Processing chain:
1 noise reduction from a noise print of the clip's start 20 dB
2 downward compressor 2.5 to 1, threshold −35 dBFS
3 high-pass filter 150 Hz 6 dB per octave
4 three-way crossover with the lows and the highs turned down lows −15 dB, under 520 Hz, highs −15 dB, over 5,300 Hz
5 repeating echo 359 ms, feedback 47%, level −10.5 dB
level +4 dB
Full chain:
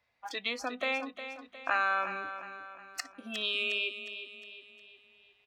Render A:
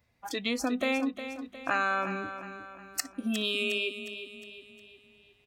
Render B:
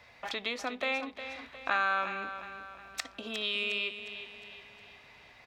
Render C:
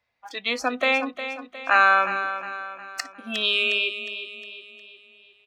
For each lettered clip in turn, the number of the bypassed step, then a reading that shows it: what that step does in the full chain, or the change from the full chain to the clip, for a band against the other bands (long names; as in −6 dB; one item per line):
4, 250 Hz band +12.0 dB
1, change in momentary loudness spread +3 LU
2, average gain reduction 8.0 dB